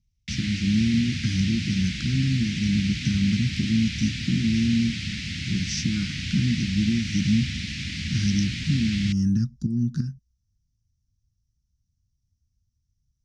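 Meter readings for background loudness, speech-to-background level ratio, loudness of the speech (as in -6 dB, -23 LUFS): -30.0 LUFS, 4.5 dB, -25.5 LUFS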